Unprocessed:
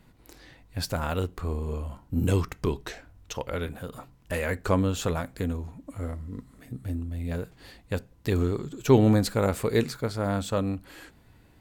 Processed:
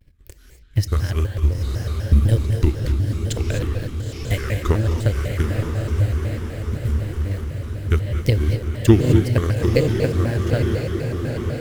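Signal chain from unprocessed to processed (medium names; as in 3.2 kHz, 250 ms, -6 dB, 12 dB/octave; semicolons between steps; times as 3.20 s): high-order bell 810 Hz -12.5 dB 1.1 oct; transient shaper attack +11 dB, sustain -7 dB; in parallel at -3.5 dB: bit crusher 6-bit; on the sum: resonant low shelf 120 Hz +9 dB, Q 1.5; on a send: echo that smears into a reverb 925 ms, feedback 57%, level -4.5 dB; on the sum: gated-style reverb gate 280 ms rising, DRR 6 dB; vibrato with a chosen wave square 4 Hz, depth 250 cents; trim -7 dB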